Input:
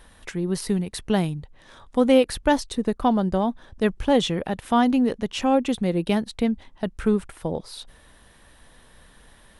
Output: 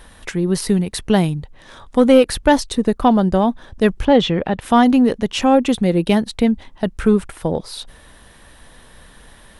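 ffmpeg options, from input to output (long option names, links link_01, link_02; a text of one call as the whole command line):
ffmpeg -i in.wav -filter_complex "[0:a]asettb=1/sr,asplit=3[link_01][link_02][link_03];[link_01]atrim=end=4.054[link_04];[link_02]atrim=start=4.05:end=4.61,asetpts=PTS-STARTPTS,afade=type=in:duration=0.004:curve=qsin,afade=type=out:start_time=0.556:duration=0.004:curve=qsin,lowpass=3700[link_05];[link_03]atrim=start=4.606[link_06];[link_04][link_05]acrossfade=duration=0.004:curve1=hsin:curve2=qsin[link_07];[link_07][link_06]acrossfade=duration=0.004:curve1=qsin:curve2=hsin,acontrast=60,volume=1dB" out.wav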